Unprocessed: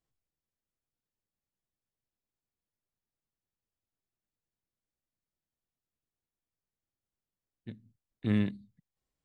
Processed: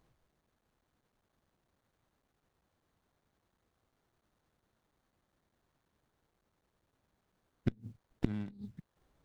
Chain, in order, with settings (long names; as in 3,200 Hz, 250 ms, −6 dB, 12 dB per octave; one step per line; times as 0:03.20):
gate with flip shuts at −33 dBFS, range −29 dB
windowed peak hold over 17 samples
level +17 dB